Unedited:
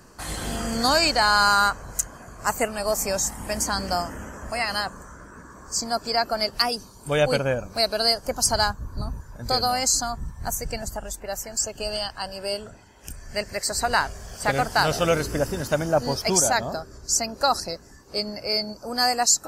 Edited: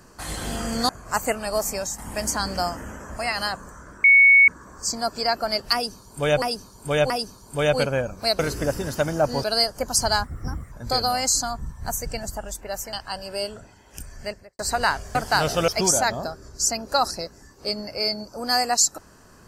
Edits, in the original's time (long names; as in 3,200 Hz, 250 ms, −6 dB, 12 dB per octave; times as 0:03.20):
0:00.89–0:02.22: remove
0:02.90–0:03.31: fade out linear, to −7.5 dB
0:05.37: insert tone 2,220 Hz −9.5 dBFS 0.44 s
0:06.63–0:07.31: repeat, 3 plays
0:08.72–0:09.31: play speed 123%
0:11.52–0:12.03: remove
0:13.22–0:13.69: fade out and dull
0:14.25–0:14.59: remove
0:15.12–0:16.17: move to 0:07.92